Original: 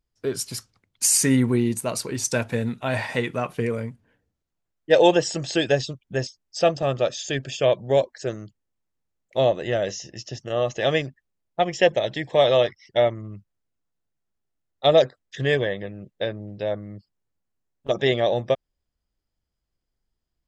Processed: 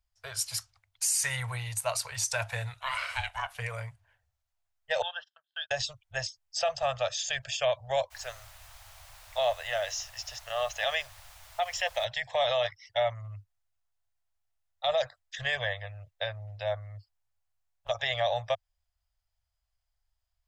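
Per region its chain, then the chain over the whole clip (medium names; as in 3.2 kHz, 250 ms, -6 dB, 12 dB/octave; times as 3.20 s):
2.81–3.55 s: high-pass 570 Hz + ring modulator 380 Hz
5.02–5.71 s: gate -26 dBFS, range -38 dB + two resonant band-passes 2.2 kHz, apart 1.1 oct + distance through air 250 m
8.10–12.04 s: high-pass 570 Hz 6 dB/octave + added noise pink -50 dBFS
whole clip: elliptic band-stop 100–670 Hz, stop band 60 dB; peak limiter -18.5 dBFS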